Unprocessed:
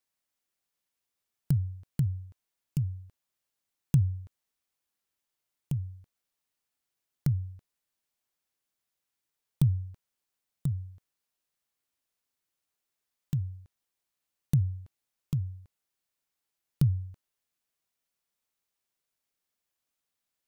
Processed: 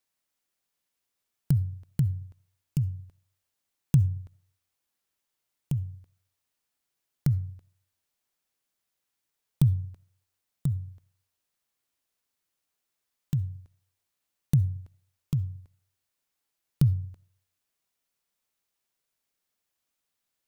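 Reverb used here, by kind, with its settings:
comb and all-pass reverb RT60 0.49 s, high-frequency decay 0.5×, pre-delay 25 ms, DRR 19 dB
level +2.5 dB

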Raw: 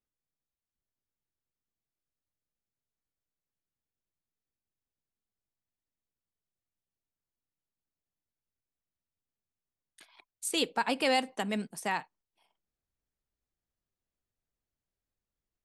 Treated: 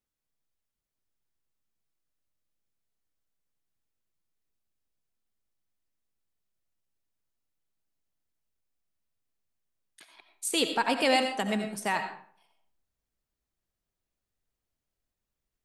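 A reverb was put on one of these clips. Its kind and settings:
comb and all-pass reverb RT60 0.52 s, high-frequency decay 0.7×, pre-delay 45 ms, DRR 6.5 dB
level +2.5 dB

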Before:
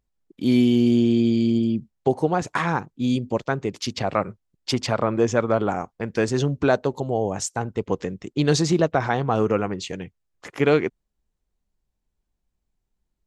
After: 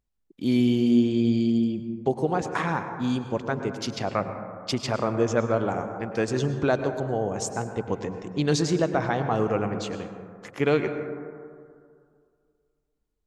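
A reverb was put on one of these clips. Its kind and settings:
dense smooth reverb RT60 2.2 s, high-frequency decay 0.25×, pre-delay 90 ms, DRR 7.5 dB
level −4 dB

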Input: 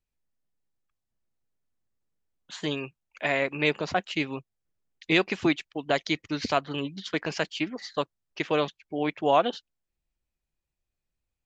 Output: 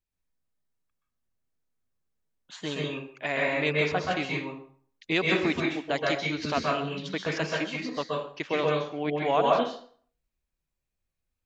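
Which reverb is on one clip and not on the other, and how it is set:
dense smooth reverb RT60 0.52 s, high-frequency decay 0.75×, pre-delay 115 ms, DRR −3 dB
level −4 dB

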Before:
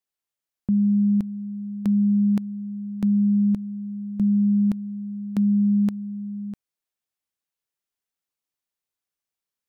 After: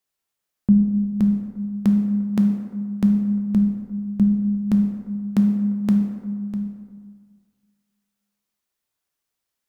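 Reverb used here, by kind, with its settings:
dense smooth reverb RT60 1.8 s, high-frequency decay 0.5×, DRR 3 dB
level +5.5 dB

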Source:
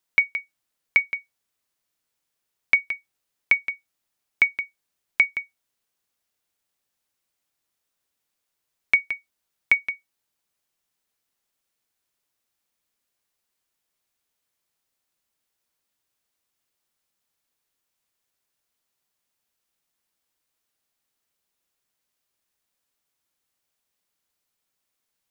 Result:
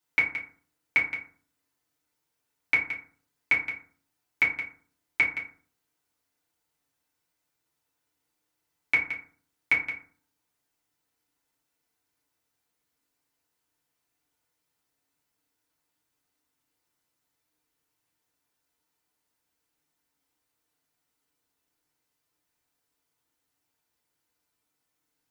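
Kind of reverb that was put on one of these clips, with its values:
feedback delay network reverb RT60 0.46 s, low-frequency decay 1.3×, high-frequency decay 0.45×, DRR −7 dB
level −6 dB

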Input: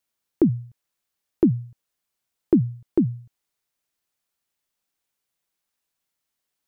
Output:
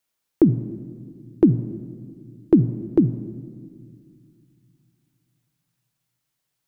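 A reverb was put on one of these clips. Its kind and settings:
rectangular room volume 3,300 cubic metres, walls mixed, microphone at 0.53 metres
level +2.5 dB

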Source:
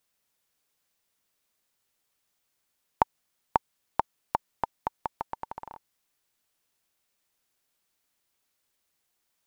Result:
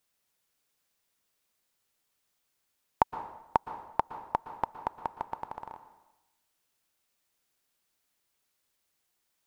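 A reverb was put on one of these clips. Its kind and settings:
dense smooth reverb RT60 0.94 s, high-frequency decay 0.8×, pre-delay 105 ms, DRR 11 dB
level −1 dB

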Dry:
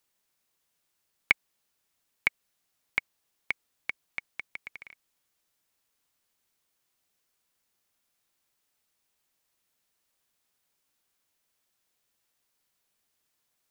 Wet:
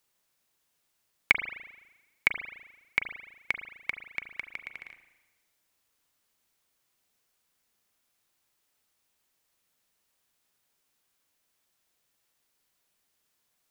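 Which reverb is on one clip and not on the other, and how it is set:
spring reverb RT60 1.1 s, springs 36 ms, chirp 35 ms, DRR 8 dB
level +1.5 dB

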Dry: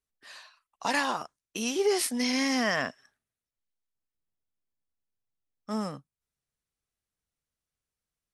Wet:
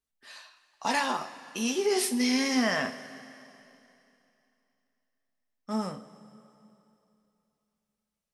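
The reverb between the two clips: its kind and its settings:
coupled-rooms reverb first 0.25 s, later 2.9 s, from −18 dB, DRR 4 dB
level −1.5 dB

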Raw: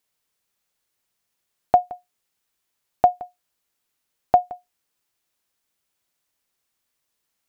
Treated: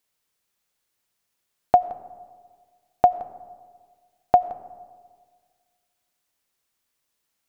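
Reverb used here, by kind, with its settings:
comb and all-pass reverb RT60 1.7 s, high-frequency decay 0.35×, pre-delay 50 ms, DRR 17 dB

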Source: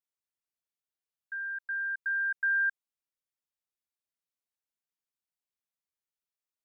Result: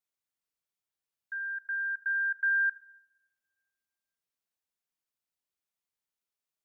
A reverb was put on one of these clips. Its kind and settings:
coupled-rooms reverb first 0.66 s, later 2 s, from −24 dB, DRR 14 dB
level +1 dB

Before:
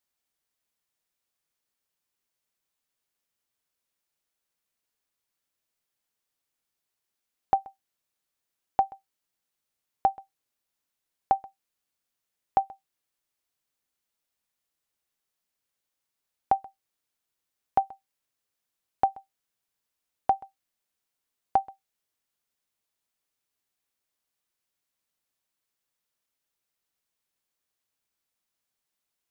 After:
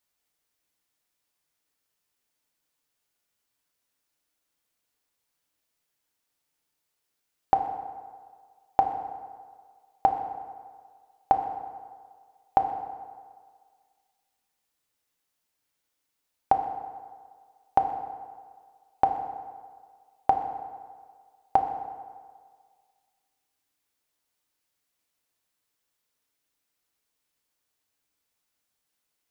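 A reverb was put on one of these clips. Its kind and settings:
feedback delay network reverb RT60 1.8 s, low-frequency decay 0.8×, high-frequency decay 0.65×, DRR 4.5 dB
level +3 dB

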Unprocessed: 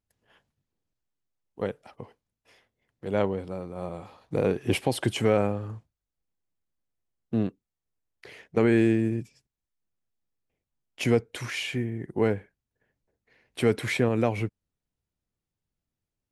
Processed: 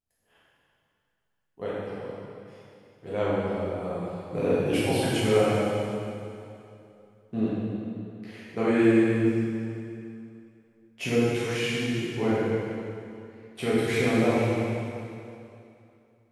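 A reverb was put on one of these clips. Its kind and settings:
dense smooth reverb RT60 2.7 s, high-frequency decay 0.9×, DRR −10 dB
level −8 dB

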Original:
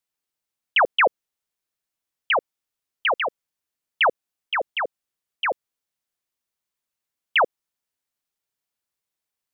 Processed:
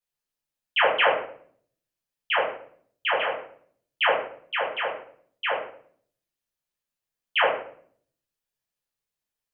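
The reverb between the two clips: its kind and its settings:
rectangular room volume 71 cubic metres, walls mixed, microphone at 1.8 metres
level −10 dB

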